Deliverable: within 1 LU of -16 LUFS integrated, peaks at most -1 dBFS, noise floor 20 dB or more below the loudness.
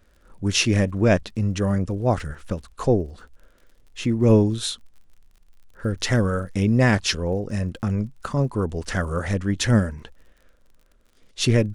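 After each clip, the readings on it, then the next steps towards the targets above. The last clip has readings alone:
ticks 46/s; loudness -23.0 LUFS; peak -5.0 dBFS; loudness target -16.0 LUFS
-> de-click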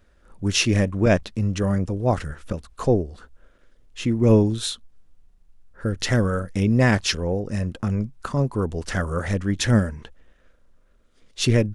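ticks 0/s; loudness -23.0 LUFS; peak -5.0 dBFS; loudness target -16.0 LUFS
-> gain +7 dB; limiter -1 dBFS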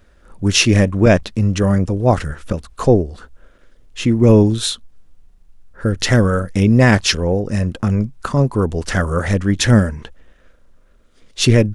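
loudness -16.0 LUFS; peak -1.0 dBFS; noise floor -51 dBFS

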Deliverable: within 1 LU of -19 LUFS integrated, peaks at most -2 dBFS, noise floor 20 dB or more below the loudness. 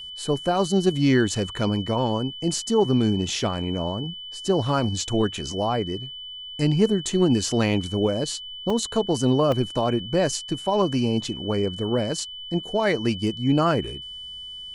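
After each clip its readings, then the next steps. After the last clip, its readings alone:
dropouts 2; longest dropout 2.4 ms; steady tone 3000 Hz; tone level -35 dBFS; loudness -23.5 LUFS; peak -7.0 dBFS; loudness target -19.0 LUFS
-> interpolate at 8.7/9.52, 2.4 ms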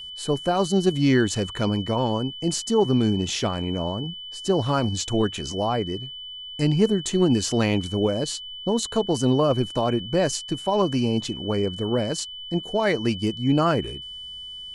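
dropouts 0; steady tone 3000 Hz; tone level -35 dBFS
-> notch 3000 Hz, Q 30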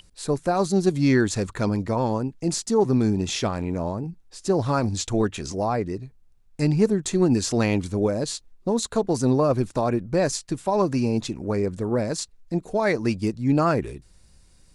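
steady tone none; loudness -24.0 LUFS; peak -7.5 dBFS; loudness target -19.0 LUFS
-> gain +5 dB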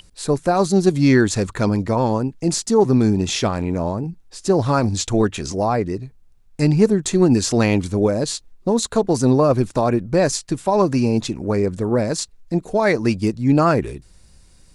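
loudness -19.0 LUFS; peak -2.5 dBFS; noise floor -51 dBFS

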